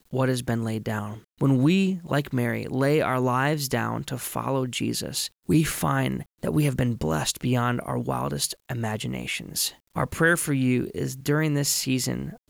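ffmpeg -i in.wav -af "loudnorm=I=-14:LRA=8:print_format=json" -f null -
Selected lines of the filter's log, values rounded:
"input_i" : "-25.3",
"input_tp" : "-8.6",
"input_lra" : "1.6",
"input_thresh" : "-35.3",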